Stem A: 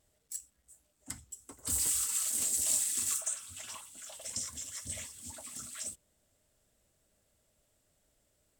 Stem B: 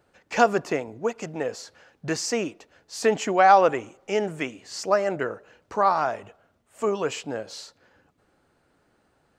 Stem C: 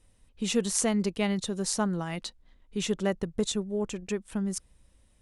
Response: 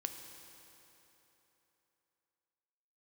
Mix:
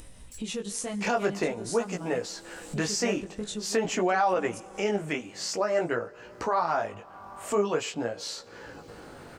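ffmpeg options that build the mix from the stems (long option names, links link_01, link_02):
-filter_complex "[0:a]alimiter=level_in=4dB:limit=-24dB:level=0:latency=1,volume=-4dB,asplit=2[link_01][link_02];[link_02]highpass=frequency=720:poles=1,volume=12dB,asoftclip=type=tanh:threshold=-18dB[link_03];[link_01][link_03]amix=inputs=2:normalize=0,lowpass=frequency=1300:poles=1,volume=-6dB,volume=-15dB[link_04];[1:a]adelay=700,volume=2dB,asplit=2[link_05][link_06];[link_06]volume=-21.5dB[link_07];[2:a]volume=-9dB,asplit=2[link_08][link_09];[link_09]volume=-5.5dB[link_10];[3:a]atrim=start_sample=2205[link_11];[link_07][link_10]amix=inputs=2:normalize=0[link_12];[link_12][link_11]afir=irnorm=-1:irlink=0[link_13];[link_04][link_05][link_08][link_13]amix=inputs=4:normalize=0,flanger=delay=16.5:depth=3.9:speed=0.48,acompressor=mode=upward:threshold=-28dB:ratio=2.5,alimiter=limit=-16dB:level=0:latency=1:release=102"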